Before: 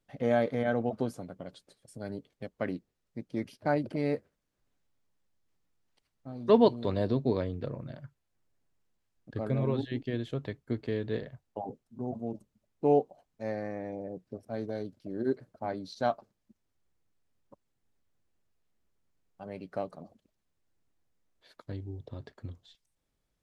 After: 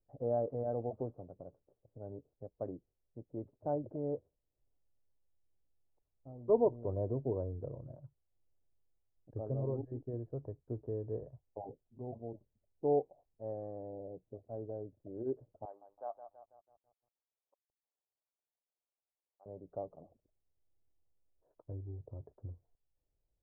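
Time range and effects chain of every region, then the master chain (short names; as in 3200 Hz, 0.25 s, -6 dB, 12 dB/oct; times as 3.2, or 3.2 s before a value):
15.65–19.46 G.711 law mismatch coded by A + HPF 860 Hz + lo-fi delay 0.163 s, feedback 55%, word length 10-bit, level -10 dB
whole clip: Bessel low-pass 510 Hz, order 6; bell 210 Hz -14.5 dB 1.1 oct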